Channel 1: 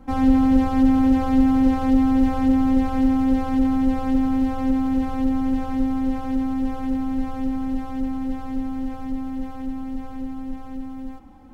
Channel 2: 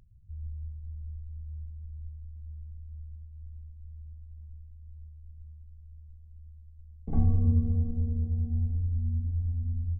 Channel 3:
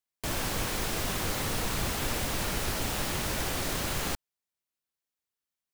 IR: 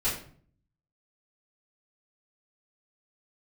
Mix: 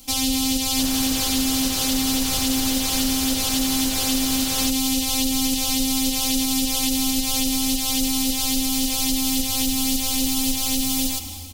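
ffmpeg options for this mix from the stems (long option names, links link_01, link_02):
-filter_complex "[0:a]highshelf=frequency=3500:gain=9.5,dynaudnorm=framelen=170:gausssize=5:maxgain=11.5dB,aexciter=amount=13.6:drive=8.2:freq=2600,volume=1.5dB[link_01];[1:a]adelay=2250,volume=-8.5dB[link_02];[2:a]adelay=550,volume=0dB[link_03];[link_01][link_02]amix=inputs=2:normalize=0,dynaudnorm=framelen=980:gausssize=3:maxgain=11.5dB,alimiter=limit=-7.5dB:level=0:latency=1:release=248,volume=0dB[link_04];[link_03][link_04]amix=inputs=2:normalize=0,acompressor=threshold=-17dB:ratio=6"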